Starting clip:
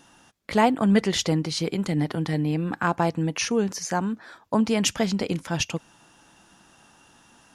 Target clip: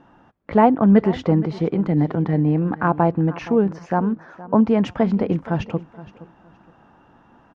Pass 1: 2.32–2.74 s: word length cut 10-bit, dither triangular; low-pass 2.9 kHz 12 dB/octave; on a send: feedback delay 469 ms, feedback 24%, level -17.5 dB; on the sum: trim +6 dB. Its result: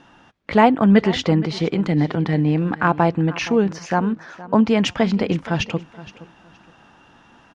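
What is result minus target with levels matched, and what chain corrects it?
4 kHz band +13.0 dB
2.32–2.74 s: word length cut 10-bit, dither triangular; low-pass 1.2 kHz 12 dB/octave; on a send: feedback delay 469 ms, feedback 24%, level -17.5 dB; on the sum: trim +6 dB

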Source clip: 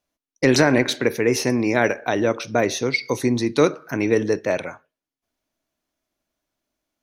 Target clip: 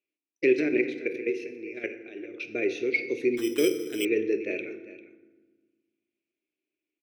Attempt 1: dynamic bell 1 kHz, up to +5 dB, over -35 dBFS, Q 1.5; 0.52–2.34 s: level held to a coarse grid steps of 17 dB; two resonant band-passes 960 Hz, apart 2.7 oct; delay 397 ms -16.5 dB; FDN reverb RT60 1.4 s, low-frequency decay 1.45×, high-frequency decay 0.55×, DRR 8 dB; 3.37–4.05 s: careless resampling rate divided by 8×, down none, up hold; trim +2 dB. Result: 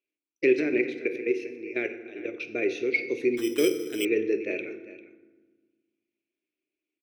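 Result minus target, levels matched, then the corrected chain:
1 kHz band +3.0 dB
0.52–2.34 s: level held to a coarse grid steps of 17 dB; two resonant band-passes 960 Hz, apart 2.7 oct; delay 397 ms -16.5 dB; FDN reverb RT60 1.4 s, low-frequency decay 1.45×, high-frequency decay 0.55×, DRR 8 dB; 3.37–4.05 s: careless resampling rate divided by 8×, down none, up hold; trim +2 dB

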